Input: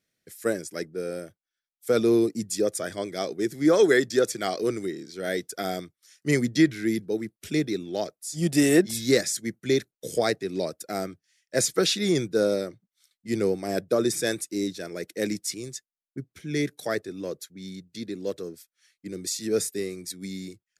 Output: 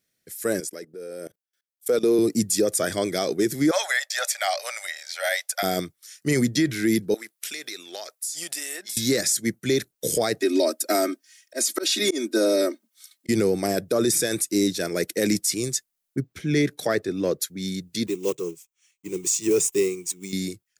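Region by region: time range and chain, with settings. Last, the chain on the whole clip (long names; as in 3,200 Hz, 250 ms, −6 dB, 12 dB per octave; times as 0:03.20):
0:00.60–0:02.19: high-pass filter 180 Hz + parametric band 470 Hz +6 dB 0.52 octaves + output level in coarse steps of 22 dB
0:03.71–0:05.63: Chebyshev high-pass with heavy ripple 560 Hz, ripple 6 dB + multiband upward and downward compressor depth 40%
0:07.14–0:08.97: high-pass filter 980 Hz + downward compressor 12 to 1, threshold −40 dBFS
0:10.41–0:13.29: Butterworth high-pass 220 Hz 72 dB per octave + comb filter 3.2 ms, depth 99% + volume swells 356 ms
0:16.20–0:17.42: parametric band 12,000 Hz −10.5 dB 1.7 octaves + hard clipping −16 dBFS
0:18.07–0:20.33: one scale factor per block 5 bits + EQ curve with evenly spaced ripples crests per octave 0.71, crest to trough 12 dB + expander for the loud parts, over −44 dBFS
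whole clip: automatic gain control gain up to 9 dB; high-shelf EQ 7,000 Hz +9 dB; brickwall limiter −12.5 dBFS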